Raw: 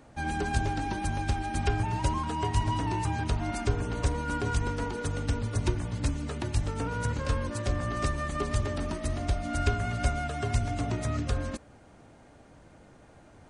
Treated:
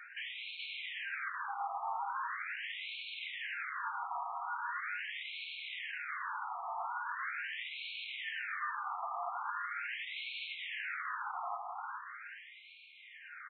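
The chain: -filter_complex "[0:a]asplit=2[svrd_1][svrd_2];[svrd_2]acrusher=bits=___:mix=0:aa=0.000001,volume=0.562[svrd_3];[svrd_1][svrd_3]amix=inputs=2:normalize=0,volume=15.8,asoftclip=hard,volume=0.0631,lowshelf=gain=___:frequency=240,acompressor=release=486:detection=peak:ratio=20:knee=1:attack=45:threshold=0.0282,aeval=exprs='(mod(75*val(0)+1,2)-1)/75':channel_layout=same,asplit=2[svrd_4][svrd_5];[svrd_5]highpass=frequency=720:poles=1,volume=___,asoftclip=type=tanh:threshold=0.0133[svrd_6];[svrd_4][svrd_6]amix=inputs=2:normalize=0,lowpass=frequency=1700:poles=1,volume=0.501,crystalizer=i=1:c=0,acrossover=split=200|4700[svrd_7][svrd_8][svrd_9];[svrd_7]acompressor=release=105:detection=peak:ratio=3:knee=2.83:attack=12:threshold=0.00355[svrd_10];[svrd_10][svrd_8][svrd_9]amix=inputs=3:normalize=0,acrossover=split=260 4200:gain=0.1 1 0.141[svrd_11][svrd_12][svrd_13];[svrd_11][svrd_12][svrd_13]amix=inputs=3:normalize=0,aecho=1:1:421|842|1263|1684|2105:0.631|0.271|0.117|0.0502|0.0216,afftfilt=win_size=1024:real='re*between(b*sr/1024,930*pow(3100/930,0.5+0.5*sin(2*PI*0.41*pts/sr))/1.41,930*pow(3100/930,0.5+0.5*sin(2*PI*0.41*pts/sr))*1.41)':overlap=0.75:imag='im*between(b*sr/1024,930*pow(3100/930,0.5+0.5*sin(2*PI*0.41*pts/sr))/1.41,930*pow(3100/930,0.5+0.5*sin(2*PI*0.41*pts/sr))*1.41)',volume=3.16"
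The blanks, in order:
5, -4.5, 5.62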